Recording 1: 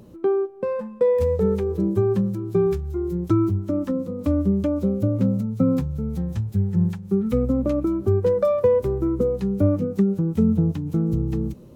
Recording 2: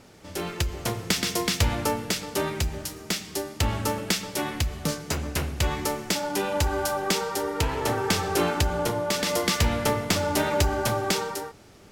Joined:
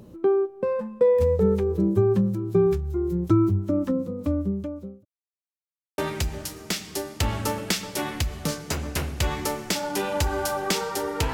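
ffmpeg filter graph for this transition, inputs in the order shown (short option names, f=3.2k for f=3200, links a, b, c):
-filter_complex "[0:a]apad=whole_dur=11.33,atrim=end=11.33,asplit=2[a][b];[a]atrim=end=5.05,asetpts=PTS-STARTPTS,afade=t=out:st=3.9:d=1.15[c];[b]atrim=start=5.05:end=5.98,asetpts=PTS-STARTPTS,volume=0[d];[1:a]atrim=start=2.38:end=7.73,asetpts=PTS-STARTPTS,afade=t=in:d=0.004:c=hsin[e];[c][d][e]concat=n=3:v=0:a=1"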